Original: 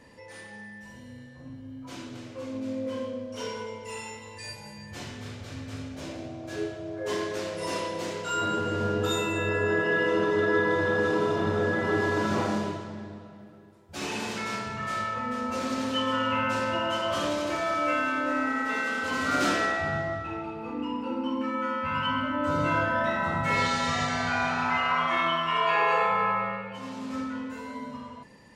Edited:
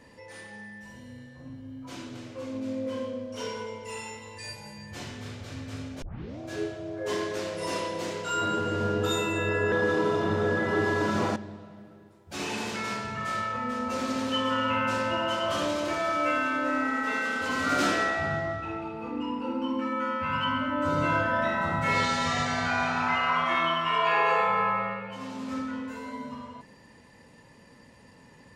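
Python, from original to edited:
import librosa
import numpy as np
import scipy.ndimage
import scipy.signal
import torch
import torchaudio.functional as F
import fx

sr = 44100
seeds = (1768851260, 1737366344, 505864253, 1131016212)

y = fx.edit(x, sr, fx.tape_start(start_s=6.02, length_s=0.37),
    fx.cut(start_s=9.72, length_s=1.16),
    fx.cut(start_s=12.52, length_s=0.46), tone=tone)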